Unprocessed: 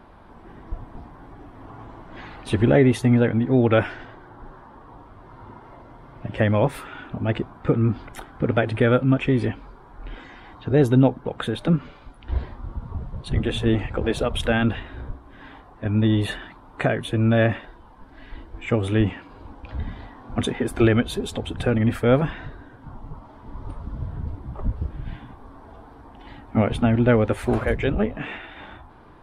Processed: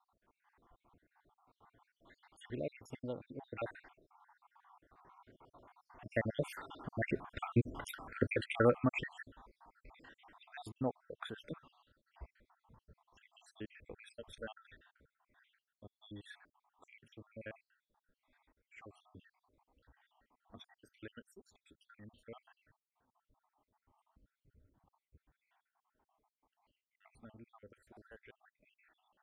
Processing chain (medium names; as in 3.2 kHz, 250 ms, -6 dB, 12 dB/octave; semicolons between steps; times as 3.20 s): random holes in the spectrogram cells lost 68%; Doppler pass-by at 7.76 s, 13 m/s, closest 8.2 m; bass shelf 380 Hz -10.5 dB; trim +1 dB